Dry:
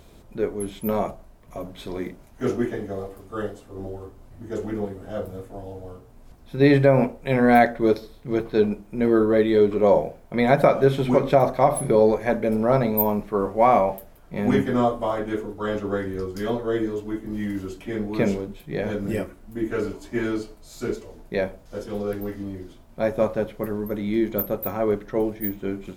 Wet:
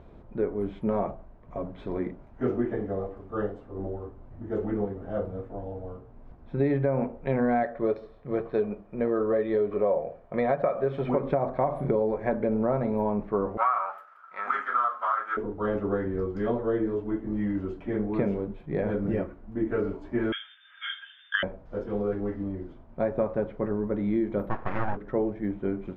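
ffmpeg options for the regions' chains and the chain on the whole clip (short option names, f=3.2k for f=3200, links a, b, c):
-filter_complex "[0:a]asettb=1/sr,asplit=3[a][b][c];[a]atrim=end=7.634[d];[b]atrim=start=7.63:end=11.15,asetpts=PTS-STARTPTS,afade=t=in:d=0.004:c=qsin,afade=t=out:st=3.516:d=0.004:c=qsin,lowshelf=f=180:g=-10,aecho=1:1:1.7:0.37,atrim=end_sample=155232[e];[c]atrim=start=11.146[f];[d][e]acrossfade=d=0.004:c1=hsin:c2=qsin[g];[g][f]acrossfade=d=0.004:c1=qsin:c2=hsin,asettb=1/sr,asplit=3[h][i][j];[h]atrim=end=13.574[k];[i]atrim=start=13.57:end=15.37,asetpts=PTS-STARTPTS,afade=t=in:d=0.004:c=qsin,afade=t=out:st=1.796:d=0.004:c=qsin,aeval=exprs='if(lt(val(0),0),0.708*val(0),val(0))':c=same,highpass=f=1.3k:t=q:w=15,aemphasis=mode=production:type=cd[l];[j]atrim=start=15.366[m];[k][l]acrossfade=d=0.004:c1=hsin:c2=qsin[n];[n][m]acrossfade=d=0.004:c1=qsin:c2=hsin,asettb=1/sr,asplit=3[o][p][q];[o]atrim=end=20.324[r];[p]atrim=start=20.32:end=21.43,asetpts=PTS-STARTPTS,afade=t=in:d=0.004:c=qsin,afade=t=out:st=1.106:d=0.004:c=qsin,lowpass=f=3.1k:t=q:w=0.5098,lowpass=f=3.1k:t=q:w=0.6013,lowpass=f=3.1k:t=q:w=0.9,lowpass=f=3.1k:t=q:w=2.563,afreqshift=-3600,highpass=f=1.6k:t=q:w=15[s];[q]atrim=start=21.426[t];[r][s]acrossfade=d=0.004:c1=hsin:c2=qsin[u];[u][t]acrossfade=d=0.004:c1=qsin:c2=hsin,asettb=1/sr,asplit=3[v][w][x];[v]atrim=end=24.494[y];[w]atrim=start=24.49:end=24.97,asetpts=PTS-STARTPTS,afade=t=in:d=0.004:c=qsin,afade=t=out:st=0.476:d=0.004:c=qsin,lowpass=f=1.2k:t=q:w=3.8,aeval=exprs='abs(val(0))':c=same[z];[x]atrim=start=24.966[aa];[y][z]acrossfade=d=0.004:c1=hsin:c2=qsin[ab];[ab][aa]acrossfade=d=0.004:c1=qsin:c2=hsin,lowpass=1.5k,acompressor=threshold=-22dB:ratio=6"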